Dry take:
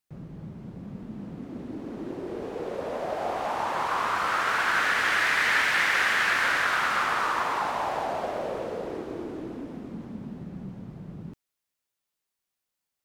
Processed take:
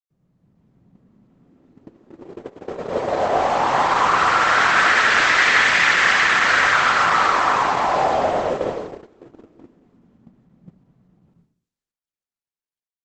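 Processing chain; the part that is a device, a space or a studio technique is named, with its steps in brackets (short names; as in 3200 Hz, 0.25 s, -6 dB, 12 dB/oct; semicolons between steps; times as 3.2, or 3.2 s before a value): speakerphone in a meeting room (reverb RT60 0.45 s, pre-delay 71 ms, DRR -1 dB; AGC gain up to 8 dB; gate -20 dBFS, range -27 dB; Opus 12 kbps 48000 Hz)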